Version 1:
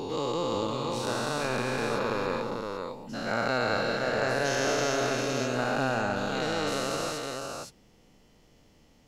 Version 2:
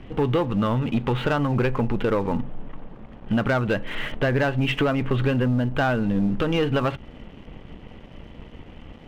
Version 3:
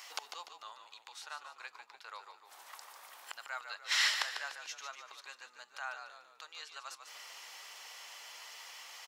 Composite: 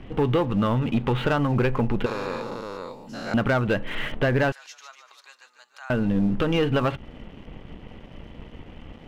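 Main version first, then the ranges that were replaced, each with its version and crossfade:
2
2.06–3.34 s: from 1
4.52–5.90 s: from 3

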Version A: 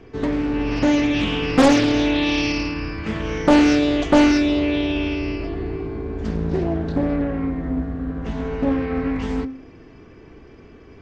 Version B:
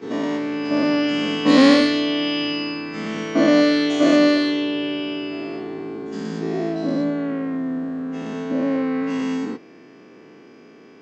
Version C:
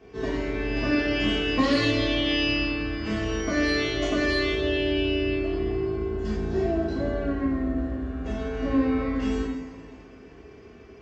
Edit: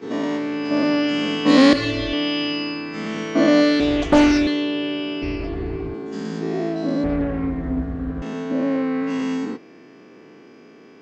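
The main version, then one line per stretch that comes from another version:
B
1.73–2.13 s: from C
3.80–4.47 s: from A
5.22–5.94 s: from A
7.04–8.22 s: from A

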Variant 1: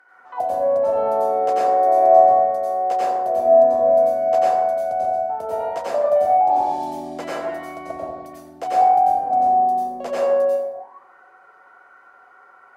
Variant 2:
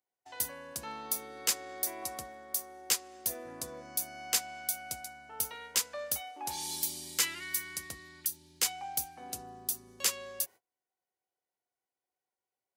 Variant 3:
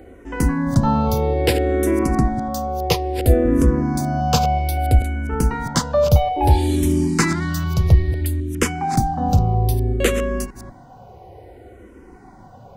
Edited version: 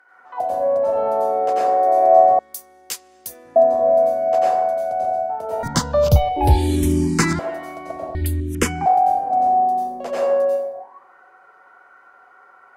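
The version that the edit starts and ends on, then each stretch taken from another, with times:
1
2.39–3.56 s: from 2
5.63–7.39 s: from 3
8.15–8.86 s: from 3

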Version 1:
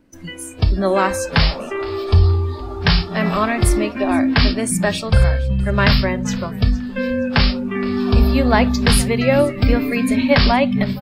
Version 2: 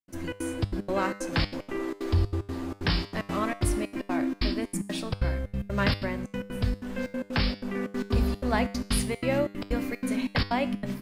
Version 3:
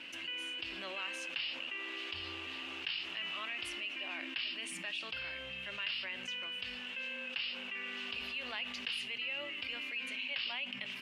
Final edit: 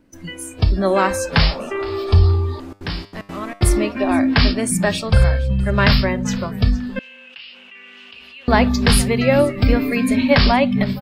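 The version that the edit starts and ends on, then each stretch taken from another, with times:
1
2.60–3.61 s: from 2
6.99–8.48 s: from 3

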